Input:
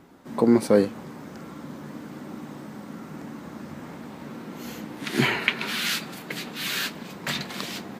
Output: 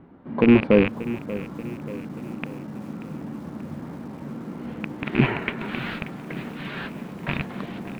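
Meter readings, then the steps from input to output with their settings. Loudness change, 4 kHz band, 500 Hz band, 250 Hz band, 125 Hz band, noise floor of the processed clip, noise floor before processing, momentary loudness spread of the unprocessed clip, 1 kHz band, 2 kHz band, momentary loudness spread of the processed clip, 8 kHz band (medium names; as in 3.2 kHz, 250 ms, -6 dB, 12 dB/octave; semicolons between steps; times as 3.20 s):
-0.5 dB, -9.5 dB, +1.5 dB, +4.0 dB, +6.5 dB, -39 dBFS, -42 dBFS, 18 LU, 0.0 dB, -1.5 dB, 17 LU, under -15 dB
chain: rattle on loud lows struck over -33 dBFS, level -7 dBFS; tone controls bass +4 dB, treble -8 dB; in parallel at -10 dB: sample-and-hold 17×; on the sum: distance through air 460 m; bit-crushed delay 584 ms, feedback 55%, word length 7-bit, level -14.5 dB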